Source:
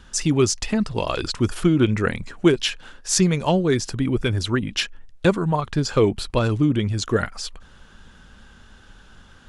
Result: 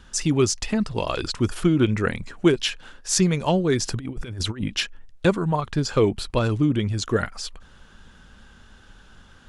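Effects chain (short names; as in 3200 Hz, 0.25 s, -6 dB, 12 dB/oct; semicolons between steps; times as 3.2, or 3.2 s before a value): 3.8–4.68 negative-ratio compressor -26 dBFS, ratio -0.5; gain -1.5 dB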